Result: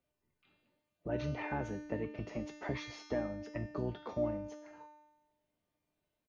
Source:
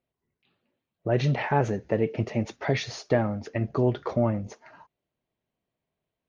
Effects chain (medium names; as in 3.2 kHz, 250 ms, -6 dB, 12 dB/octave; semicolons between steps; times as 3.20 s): harmony voices -12 st -7 dB; feedback comb 300 Hz, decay 0.83 s, mix 90%; three bands compressed up and down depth 40%; trim +3.5 dB